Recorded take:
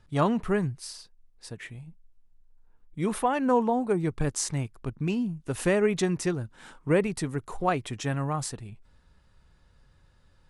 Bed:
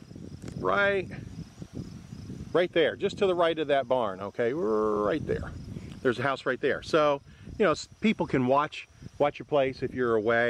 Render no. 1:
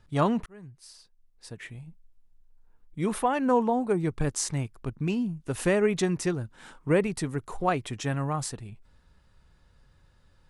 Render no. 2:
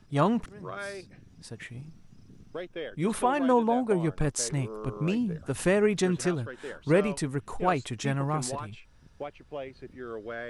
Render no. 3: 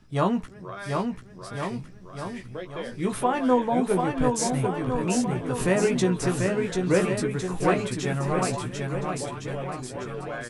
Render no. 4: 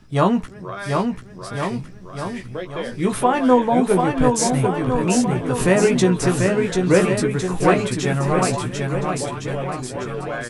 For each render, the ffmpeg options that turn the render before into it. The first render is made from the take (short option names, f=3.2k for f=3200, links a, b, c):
-filter_complex "[0:a]asplit=2[a][b];[a]atrim=end=0.46,asetpts=PTS-STARTPTS,afade=t=out:st=0.456:d=0.004:c=hsin[c];[b]atrim=start=0.46,asetpts=PTS-STARTPTS,afade=t=in:d=1.29[d];[c][d]concat=n=2:v=0:a=1"
-filter_complex "[1:a]volume=-13dB[a];[0:a][a]amix=inputs=2:normalize=0"
-filter_complex "[0:a]asplit=2[a][b];[b]adelay=16,volume=-5.5dB[c];[a][c]amix=inputs=2:normalize=0,aecho=1:1:740|1406|2005|2545|3030:0.631|0.398|0.251|0.158|0.1"
-af "volume=6.5dB"